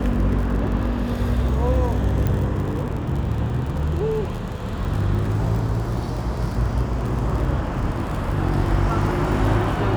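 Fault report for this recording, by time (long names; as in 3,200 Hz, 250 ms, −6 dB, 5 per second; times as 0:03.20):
surface crackle 54 per second −28 dBFS
0:02.27: click −11 dBFS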